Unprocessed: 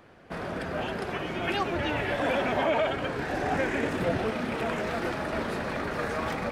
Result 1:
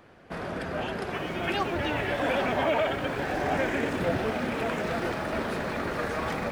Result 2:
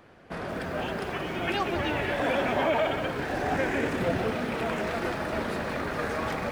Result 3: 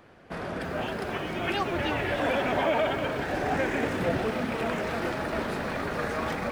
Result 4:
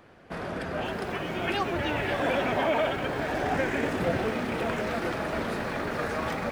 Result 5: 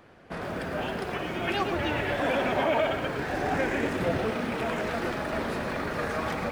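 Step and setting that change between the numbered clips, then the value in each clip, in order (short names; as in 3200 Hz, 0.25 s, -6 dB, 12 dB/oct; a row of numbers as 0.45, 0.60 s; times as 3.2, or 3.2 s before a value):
lo-fi delay, time: 0.827, 0.181, 0.307, 0.539, 0.111 s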